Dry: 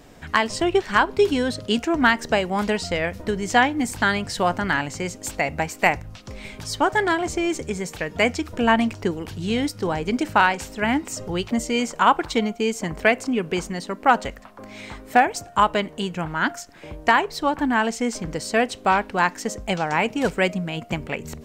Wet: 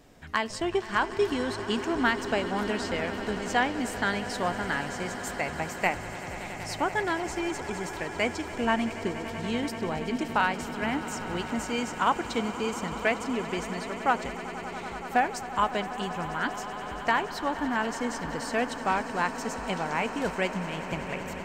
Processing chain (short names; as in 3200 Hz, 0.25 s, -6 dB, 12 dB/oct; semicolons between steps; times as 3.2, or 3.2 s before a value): swelling echo 95 ms, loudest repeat 8, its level -17 dB; gain -8 dB